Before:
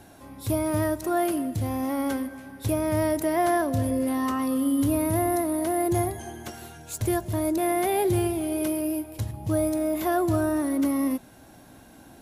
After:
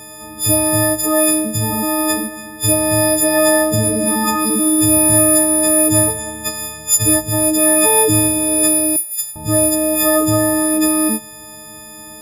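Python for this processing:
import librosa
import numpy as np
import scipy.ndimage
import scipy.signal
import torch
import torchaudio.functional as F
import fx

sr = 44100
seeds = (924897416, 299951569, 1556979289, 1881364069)

y = fx.freq_snap(x, sr, grid_st=6)
y = fx.differentiator(y, sr, at=(8.96, 9.36))
y = y * librosa.db_to_amplitude(8.0)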